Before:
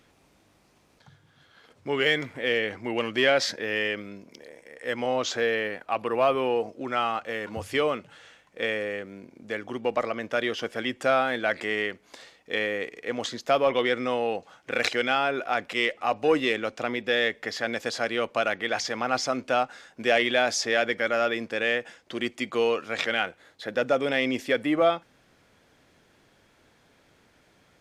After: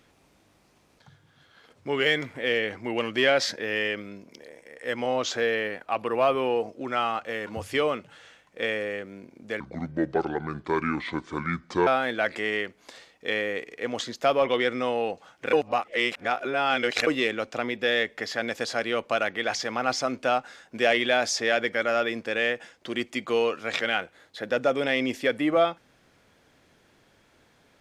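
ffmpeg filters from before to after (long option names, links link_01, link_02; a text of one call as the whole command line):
ffmpeg -i in.wav -filter_complex "[0:a]asplit=5[link_01][link_02][link_03][link_04][link_05];[link_01]atrim=end=9.604[link_06];[link_02]atrim=start=9.6:end=11.12,asetpts=PTS-STARTPTS,asetrate=29547,aresample=44100[link_07];[link_03]atrim=start=11.116:end=14.782[link_08];[link_04]atrim=start=14.778:end=16.322,asetpts=PTS-STARTPTS,areverse[link_09];[link_05]atrim=start=16.318[link_10];[link_06][link_07]acrossfade=duration=0.004:curve1=hsin:curve2=hsin[link_11];[link_11][link_08]acrossfade=duration=0.004:curve1=hsin:curve2=hsin[link_12];[link_12][link_09]acrossfade=duration=0.004:curve1=hsin:curve2=hsin[link_13];[link_13][link_10]acrossfade=duration=0.004:curve1=hsin:curve2=hsin" out.wav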